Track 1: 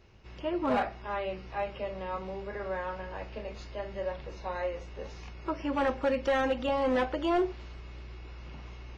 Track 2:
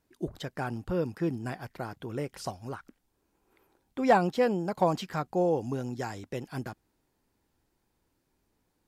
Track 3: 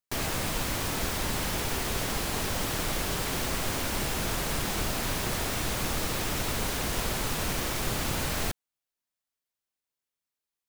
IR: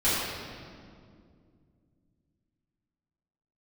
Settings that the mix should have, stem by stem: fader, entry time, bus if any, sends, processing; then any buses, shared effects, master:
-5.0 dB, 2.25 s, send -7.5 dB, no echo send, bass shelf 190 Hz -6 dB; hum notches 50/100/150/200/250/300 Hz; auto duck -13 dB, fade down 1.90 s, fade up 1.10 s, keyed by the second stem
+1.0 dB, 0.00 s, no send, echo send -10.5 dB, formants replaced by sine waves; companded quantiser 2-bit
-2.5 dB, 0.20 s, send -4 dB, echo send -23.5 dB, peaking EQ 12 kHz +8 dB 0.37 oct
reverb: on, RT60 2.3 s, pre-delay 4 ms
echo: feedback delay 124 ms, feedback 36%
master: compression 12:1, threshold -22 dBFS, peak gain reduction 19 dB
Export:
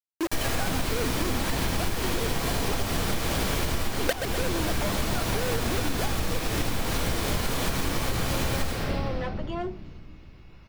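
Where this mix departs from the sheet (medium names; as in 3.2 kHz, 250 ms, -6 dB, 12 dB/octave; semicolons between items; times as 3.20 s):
stem 1: send off; stem 3: missing peaking EQ 12 kHz +8 dB 0.37 oct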